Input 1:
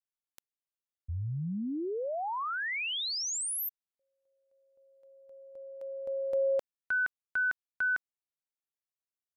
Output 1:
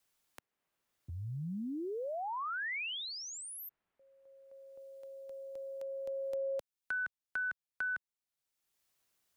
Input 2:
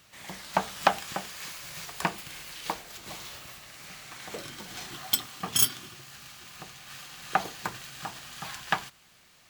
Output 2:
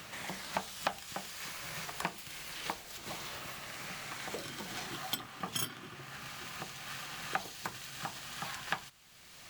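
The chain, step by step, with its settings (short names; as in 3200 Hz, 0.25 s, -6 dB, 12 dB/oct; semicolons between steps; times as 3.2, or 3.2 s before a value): three-band squash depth 70%; gain -4.5 dB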